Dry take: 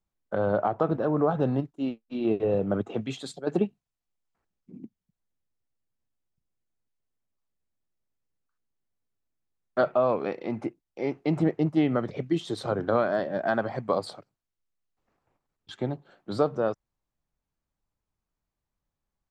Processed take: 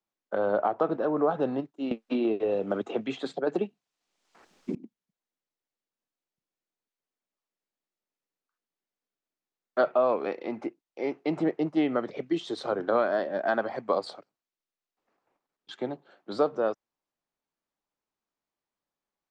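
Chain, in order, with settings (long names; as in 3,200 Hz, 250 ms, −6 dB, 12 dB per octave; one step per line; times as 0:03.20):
three-way crossover with the lows and the highs turned down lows −21 dB, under 220 Hz, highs −19 dB, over 7,700 Hz
0:01.91–0:04.75: multiband upward and downward compressor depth 100%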